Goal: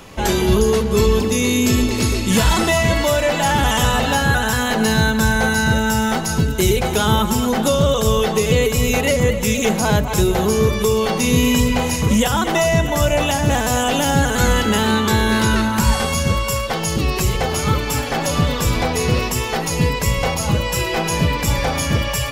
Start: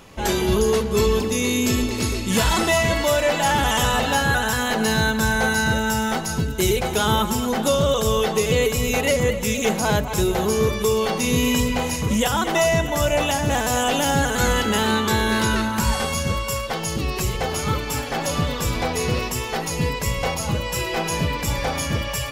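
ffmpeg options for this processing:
-filter_complex "[0:a]acrossover=split=250[s0][s1];[s1]acompressor=threshold=0.0398:ratio=1.5[s2];[s0][s2]amix=inputs=2:normalize=0,volume=2"

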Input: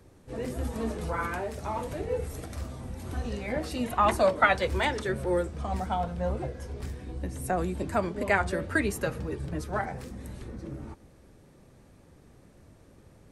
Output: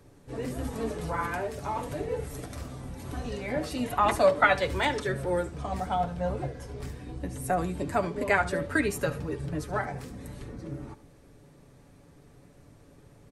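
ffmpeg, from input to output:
-filter_complex "[0:a]aecho=1:1:7:0.42,asplit=2[s0][s1];[s1]aecho=0:1:72:0.15[s2];[s0][s2]amix=inputs=2:normalize=0"

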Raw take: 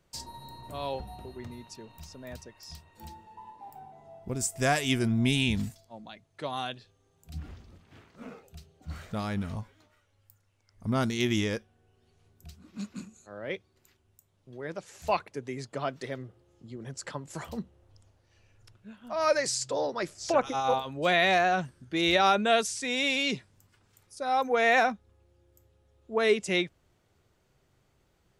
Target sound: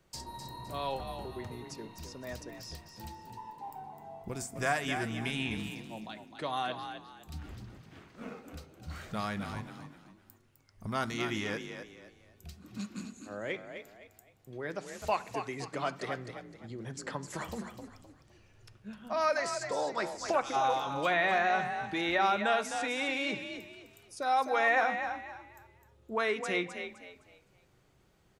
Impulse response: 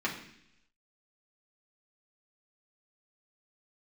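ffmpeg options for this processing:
-filter_complex "[0:a]acrossover=split=710|1900[s0][s1][s2];[s0]acompressor=threshold=0.0112:ratio=4[s3];[s1]acompressor=threshold=0.0355:ratio=4[s4];[s2]acompressor=threshold=0.00708:ratio=4[s5];[s3][s4][s5]amix=inputs=3:normalize=0,asplit=5[s6][s7][s8][s9][s10];[s7]adelay=257,afreqshift=42,volume=0.398[s11];[s8]adelay=514,afreqshift=84,volume=0.123[s12];[s9]adelay=771,afreqshift=126,volume=0.0385[s13];[s10]adelay=1028,afreqshift=168,volume=0.0119[s14];[s6][s11][s12][s13][s14]amix=inputs=5:normalize=0,asplit=2[s15][s16];[1:a]atrim=start_sample=2205[s17];[s16][s17]afir=irnorm=-1:irlink=0,volume=0.158[s18];[s15][s18]amix=inputs=2:normalize=0"

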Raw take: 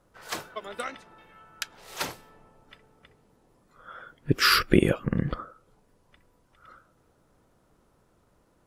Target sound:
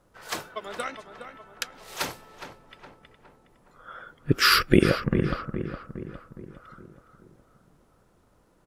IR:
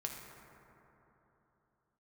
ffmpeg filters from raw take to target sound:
-filter_complex "[0:a]asplit=2[s0][s1];[s1]adelay=414,lowpass=f=2200:p=1,volume=0.355,asplit=2[s2][s3];[s3]adelay=414,lowpass=f=2200:p=1,volume=0.52,asplit=2[s4][s5];[s5]adelay=414,lowpass=f=2200:p=1,volume=0.52,asplit=2[s6][s7];[s7]adelay=414,lowpass=f=2200:p=1,volume=0.52,asplit=2[s8][s9];[s9]adelay=414,lowpass=f=2200:p=1,volume=0.52,asplit=2[s10][s11];[s11]adelay=414,lowpass=f=2200:p=1,volume=0.52[s12];[s0][s2][s4][s6][s8][s10][s12]amix=inputs=7:normalize=0,volume=1.19"

